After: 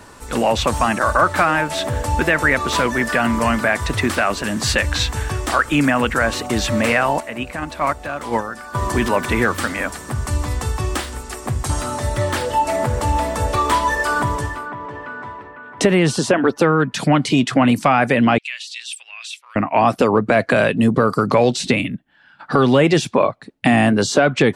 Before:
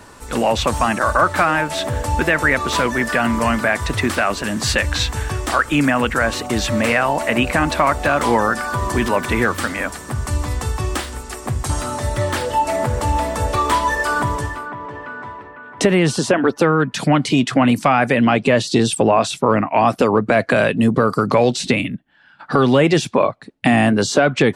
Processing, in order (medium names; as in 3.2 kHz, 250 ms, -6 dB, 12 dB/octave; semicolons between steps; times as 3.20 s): 7.20–8.75 s: gate -13 dBFS, range -11 dB; 18.38–19.56 s: ladder high-pass 2.1 kHz, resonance 50%